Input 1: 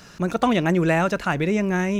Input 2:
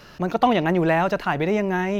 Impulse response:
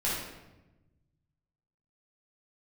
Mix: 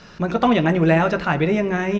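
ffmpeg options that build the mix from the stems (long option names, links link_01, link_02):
-filter_complex "[0:a]lowpass=frequency=5200:width=0.5412,lowpass=frequency=5200:width=1.3066,volume=1dB,asplit=2[link_01][link_02];[link_02]volume=-19.5dB[link_03];[1:a]lowpass=frequency=1200:poles=1,acontrast=82,adelay=13,volume=-11dB[link_04];[2:a]atrim=start_sample=2205[link_05];[link_03][link_05]afir=irnorm=-1:irlink=0[link_06];[link_01][link_04][link_06]amix=inputs=3:normalize=0"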